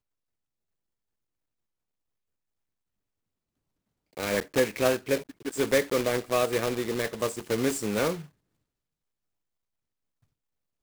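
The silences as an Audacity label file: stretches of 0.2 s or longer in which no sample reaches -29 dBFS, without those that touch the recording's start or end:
5.180000	5.470000	silence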